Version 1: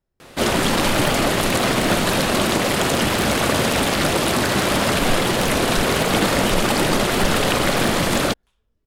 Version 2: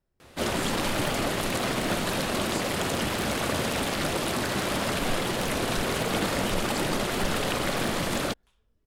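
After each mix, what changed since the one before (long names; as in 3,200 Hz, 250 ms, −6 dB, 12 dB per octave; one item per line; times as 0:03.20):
first sound −9.0 dB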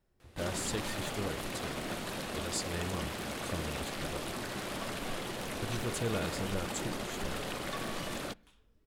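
speech +3.5 dB
first sound −11.0 dB
reverb: on, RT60 0.70 s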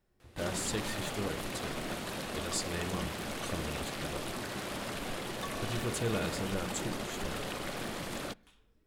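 speech: send +7.5 dB
second sound: entry −2.30 s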